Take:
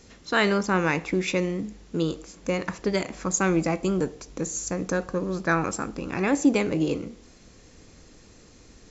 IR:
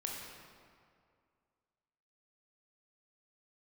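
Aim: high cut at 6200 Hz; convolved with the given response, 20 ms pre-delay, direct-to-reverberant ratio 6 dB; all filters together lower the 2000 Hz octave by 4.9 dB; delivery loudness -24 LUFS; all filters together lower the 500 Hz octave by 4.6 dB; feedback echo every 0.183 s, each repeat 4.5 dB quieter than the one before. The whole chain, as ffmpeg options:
-filter_complex "[0:a]lowpass=6.2k,equalizer=f=500:t=o:g=-6,equalizer=f=2k:t=o:g=-6,aecho=1:1:183|366|549|732|915|1098|1281|1464|1647:0.596|0.357|0.214|0.129|0.0772|0.0463|0.0278|0.0167|0.01,asplit=2[a][b];[1:a]atrim=start_sample=2205,adelay=20[c];[b][c]afir=irnorm=-1:irlink=0,volume=-7dB[d];[a][d]amix=inputs=2:normalize=0,volume=2dB"

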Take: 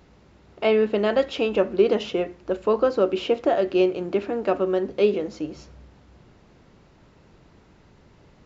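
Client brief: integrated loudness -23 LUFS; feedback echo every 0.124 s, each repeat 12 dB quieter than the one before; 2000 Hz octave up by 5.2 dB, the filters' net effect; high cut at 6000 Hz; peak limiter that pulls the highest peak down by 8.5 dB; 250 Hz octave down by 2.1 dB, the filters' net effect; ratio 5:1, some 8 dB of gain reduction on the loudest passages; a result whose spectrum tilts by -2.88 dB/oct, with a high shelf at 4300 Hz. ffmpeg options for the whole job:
-af "lowpass=6k,equalizer=f=250:t=o:g=-3.5,equalizer=f=2k:t=o:g=6,highshelf=f=4.3k:g=3.5,acompressor=threshold=-24dB:ratio=5,alimiter=limit=-22dB:level=0:latency=1,aecho=1:1:124|248|372:0.251|0.0628|0.0157,volume=9dB"

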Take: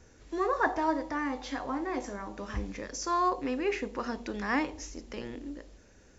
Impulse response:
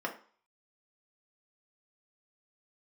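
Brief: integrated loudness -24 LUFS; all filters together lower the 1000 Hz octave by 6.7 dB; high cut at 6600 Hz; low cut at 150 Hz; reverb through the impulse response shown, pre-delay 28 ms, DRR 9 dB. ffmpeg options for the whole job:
-filter_complex "[0:a]highpass=150,lowpass=6.6k,equalizer=f=1k:t=o:g=-8,asplit=2[a][b];[1:a]atrim=start_sample=2205,adelay=28[c];[b][c]afir=irnorm=-1:irlink=0,volume=-14.5dB[d];[a][d]amix=inputs=2:normalize=0,volume=11dB"

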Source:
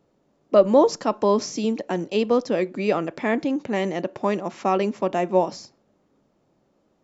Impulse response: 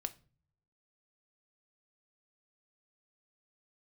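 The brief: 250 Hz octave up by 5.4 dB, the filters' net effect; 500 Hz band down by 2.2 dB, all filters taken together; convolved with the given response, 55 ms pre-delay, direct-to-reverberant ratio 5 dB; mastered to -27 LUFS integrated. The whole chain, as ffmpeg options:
-filter_complex "[0:a]equalizer=f=250:t=o:g=8,equalizer=f=500:t=o:g=-5,asplit=2[a][b];[1:a]atrim=start_sample=2205,adelay=55[c];[b][c]afir=irnorm=-1:irlink=0,volume=-4dB[d];[a][d]amix=inputs=2:normalize=0,volume=-6.5dB"

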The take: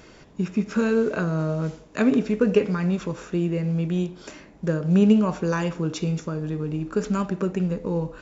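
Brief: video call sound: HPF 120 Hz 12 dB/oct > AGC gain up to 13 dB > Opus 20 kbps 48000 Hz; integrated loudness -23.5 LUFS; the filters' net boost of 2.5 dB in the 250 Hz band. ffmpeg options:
-af "highpass=120,equalizer=f=250:t=o:g=4,dynaudnorm=m=13dB,volume=-1dB" -ar 48000 -c:a libopus -b:a 20k

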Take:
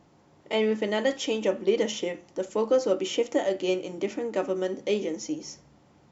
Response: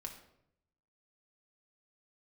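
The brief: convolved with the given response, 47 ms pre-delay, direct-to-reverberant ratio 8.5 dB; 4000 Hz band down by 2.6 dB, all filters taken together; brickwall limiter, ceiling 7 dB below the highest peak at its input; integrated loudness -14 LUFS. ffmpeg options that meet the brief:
-filter_complex "[0:a]equalizer=f=4k:t=o:g=-4,alimiter=limit=-19dB:level=0:latency=1,asplit=2[a][b];[1:a]atrim=start_sample=2205,adelay=47[c];[b][c]afir=irnorm=-1:irlink=0,volume=-5.5dB[d];[a][d]amix=inputs=2:normalize=0,volume=15.5dB"

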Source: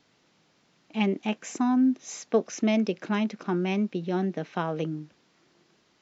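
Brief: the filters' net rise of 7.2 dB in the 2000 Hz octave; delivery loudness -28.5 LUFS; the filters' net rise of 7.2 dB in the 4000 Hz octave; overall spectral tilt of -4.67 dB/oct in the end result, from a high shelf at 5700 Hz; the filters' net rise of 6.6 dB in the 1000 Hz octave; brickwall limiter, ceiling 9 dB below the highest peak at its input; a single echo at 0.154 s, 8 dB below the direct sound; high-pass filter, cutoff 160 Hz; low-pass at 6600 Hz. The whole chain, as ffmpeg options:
-af "highpass=160,lowpass=6.6k,equalizer=f=1k:t=o:g=7,equalizer=f=2k:t=o:g=5,equalizer=f=4k:t=o:g=6.5,highshelf=f=5.7k:g=3.5,alimiter=limit=-15.5dB:level=0:latency=1,aecho=1:1:154:0.398,volume=-1dB"

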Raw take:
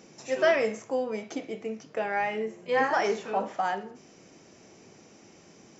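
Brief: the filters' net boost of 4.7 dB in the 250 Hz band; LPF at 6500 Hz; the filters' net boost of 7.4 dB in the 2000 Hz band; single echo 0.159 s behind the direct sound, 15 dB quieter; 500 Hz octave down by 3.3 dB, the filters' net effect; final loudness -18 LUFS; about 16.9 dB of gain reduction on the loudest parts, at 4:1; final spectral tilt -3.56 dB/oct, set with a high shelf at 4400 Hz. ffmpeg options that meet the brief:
-af "lowpass=6.5k,equalizer=f=250:t=o:g=7,equalizer=f=500:t=o:g=-6.5,equalizer=f=2k:t=o:g=8,highshelf=f=4.4k:g=6.5,acompressor=threshold=-38dB:ratio=4,aecho=1:1:159:0.178,volume=22.5dB"

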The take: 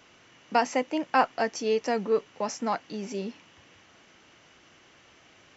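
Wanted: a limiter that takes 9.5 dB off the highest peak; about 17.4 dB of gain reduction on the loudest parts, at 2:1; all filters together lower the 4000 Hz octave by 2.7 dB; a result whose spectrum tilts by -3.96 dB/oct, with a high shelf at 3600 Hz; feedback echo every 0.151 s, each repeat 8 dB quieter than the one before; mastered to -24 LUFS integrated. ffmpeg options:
-af "highshelf=f=3.6k:g=3.5,equalizer=f=4k:t=o:g=-7,acompressor=threshold=-51dB:ratio=2,alimiter=level_in=10.5dB:limit=-24dB:level=0:latency=1,volume=-10.5dB,aecho=1:1:151|302|453|604|755:0.398|0.159|0.0637|0.0255|0.0102,volume=23.5dB"

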